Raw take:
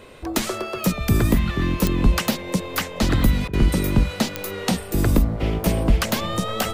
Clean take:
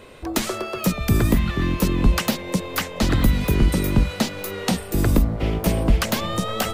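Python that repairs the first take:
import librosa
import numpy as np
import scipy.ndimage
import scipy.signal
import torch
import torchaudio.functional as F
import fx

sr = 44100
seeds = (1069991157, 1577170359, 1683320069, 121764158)

y = fx.fix_declick_ar(x, sr, threshold=10.0)
y = fx.fix_interpolate(y, sr, at_s=(3.48,), length_ms=52.0)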